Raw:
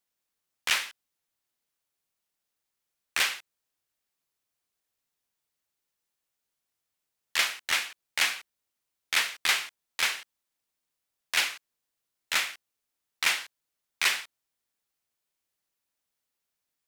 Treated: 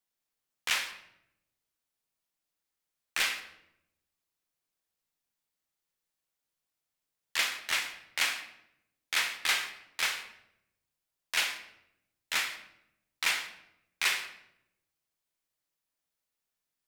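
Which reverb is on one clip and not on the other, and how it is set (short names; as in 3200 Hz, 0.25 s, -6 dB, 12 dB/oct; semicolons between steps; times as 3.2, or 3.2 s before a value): shoebox room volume 230 m³, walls mixed, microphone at 0.6 m; gain -4 dB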